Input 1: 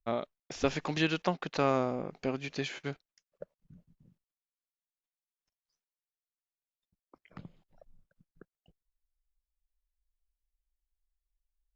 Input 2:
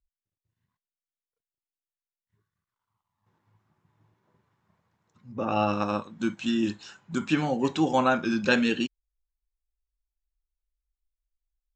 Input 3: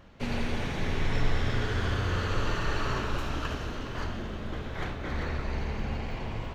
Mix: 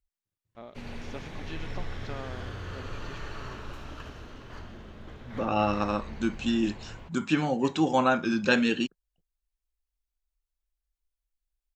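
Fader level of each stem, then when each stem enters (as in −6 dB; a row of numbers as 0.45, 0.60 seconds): −13.0, −0.5, −9.5 decibels; 0.50, 0.00, 0.55 seconds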